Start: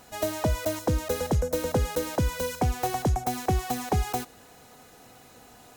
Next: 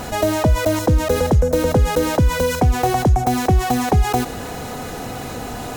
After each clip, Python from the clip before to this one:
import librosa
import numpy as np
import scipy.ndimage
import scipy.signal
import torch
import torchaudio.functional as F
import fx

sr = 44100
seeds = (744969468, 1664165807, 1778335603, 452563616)

y = fx.tilt_eq(x, sr, slope=-1.5)
y = fx.env_flatten(y, sr, amount_pct=50)
y = y * librosa.db_to_amplitude(4.5)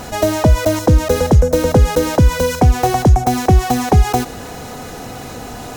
y = fx.peak_eq(x, sr, hz=5700.0, db=3.0, octaves=0.62)
y = fx.upward_expand(y, sr, threshold_db=-24.0, expansion=1.5)
y = y * librosa.db_to_amplitude(5.5)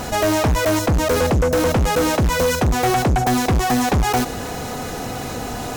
y = np.clip(10.0 ** (17.0 / 20.0) * x, -1.0, 1.0) / 10.0 ** (17.0 / 20.0)
y = y * librosa.db_to_amplitude(2.5)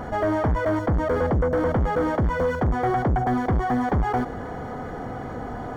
y = scipy.signal.savgol_filter(x, 41, 4, mode='constant')
y = y * librosa.db_to_amplitude(-4.5)